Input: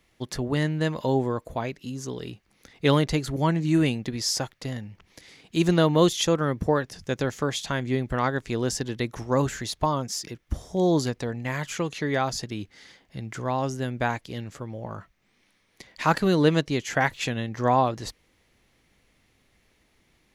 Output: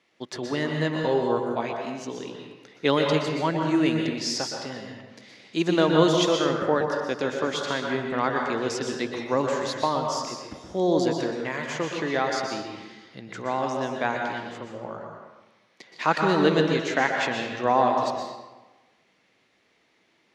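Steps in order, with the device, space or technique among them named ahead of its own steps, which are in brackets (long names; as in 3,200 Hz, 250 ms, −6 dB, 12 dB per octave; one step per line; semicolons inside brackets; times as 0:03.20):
supermarket ceiling speaker (band-pass filter 250–5,600 Hz; convolution reverb RT60 1.2 s, pre-delay 115 ms, DRR 1.5 dB)
0:01.02–0:01.73: double-tracking delay 17 ms −4.5 dB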